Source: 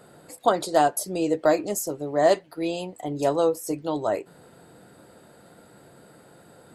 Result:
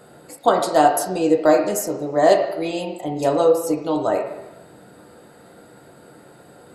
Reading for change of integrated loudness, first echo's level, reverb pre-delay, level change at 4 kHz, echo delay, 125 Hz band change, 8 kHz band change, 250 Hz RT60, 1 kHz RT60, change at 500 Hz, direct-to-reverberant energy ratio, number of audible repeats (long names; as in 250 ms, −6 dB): +5.5 dB, no echo audible, 5 ms, +4.0 dB, no echo audible, +3.5 dB, +3.0 dB, 1.0 s, 1.0 s, +5.5 dB, 2.5 dB, no echo audible